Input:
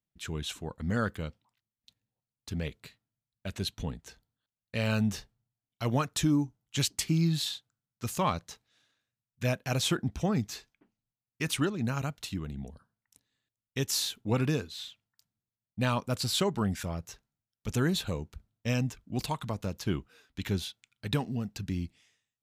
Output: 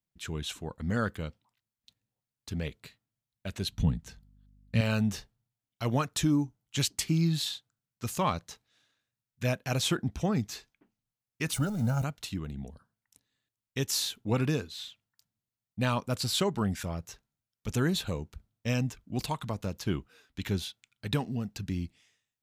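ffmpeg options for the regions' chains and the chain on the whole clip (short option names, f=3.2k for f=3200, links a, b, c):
-filter_complex "[0:a]asettb=1/sr,asplit=3[a][b][c];[a]atrim=end=3.714[d];[b]atrim=start=3.71:end=4.81,asetpts=PTS-STARTPTS,afade=t=in:d=0.004:c=qsin,afade=t=out:st=1.096:d=0.004:c=qsin,lowshelf=f=260:t=q:w=1.5:g=8.5,aeval=exprs='val(0)+0.00112*(sin(2*PI*50*n/s)+sin(2*PI*2*50*n/s)/2+sin(2*PI*3*50*n/s)/3+sin(2*PI*4*50*n/s)/4+sin(2*PI*5*50*n/s)/5)':c=same[e];[c]atrim=start=4.806[f];[d][e]acrossfade=d=0.004:c1=hsin:c2=qsin[g];[g][f]acrossfade=d=0.004:c1=qsin:c2=hsin,asettb=1/sr,asplit=3[h][i][j];[h]atrim=end=11.534[k];[i]atrim=start=11.53:end=12.04,asetpts=PTS-STARTPTS,afade=t=in:d=0.004:c=qsin,afade=t=out:st=0.506:d=0.004:c=qsin,aeval=exprs='val(0)+0.5*0.0133*sgn(val(0))':c=same,equalizer=f=2.5k:w=0.76:g=-14,aecho=1:1:1.4:0.77,atrim=end_sample=22491[l];[j]atrim=start=12.036[m];[k][l]acrossfade=d=0.004:c1=hsin:c2=qsin[n];[n][m]acrossfade=d=0.004:c1=qsin:c2=hsin"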